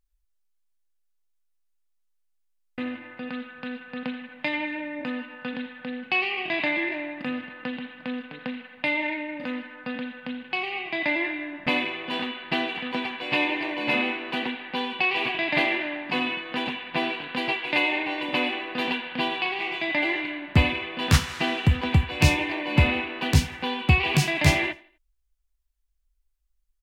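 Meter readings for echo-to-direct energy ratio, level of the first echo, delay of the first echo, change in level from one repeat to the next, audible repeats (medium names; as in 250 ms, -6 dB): -20.5 dB, -21.0 dB, 83 ms, -8.0 dB, 2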